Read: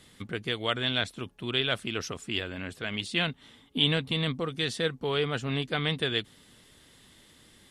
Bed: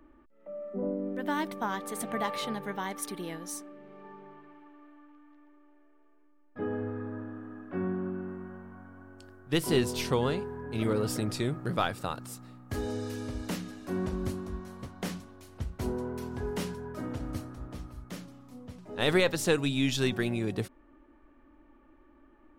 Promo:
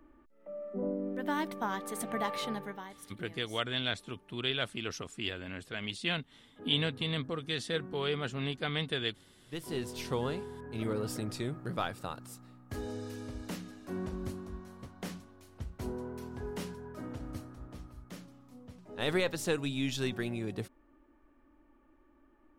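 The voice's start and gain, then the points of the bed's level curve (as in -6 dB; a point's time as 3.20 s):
2.90 s, -5.0 dB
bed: 2.59 s -2 dB
2.96 s -15 dB
9.41 s -15 dB
10.18 s -5.5 dB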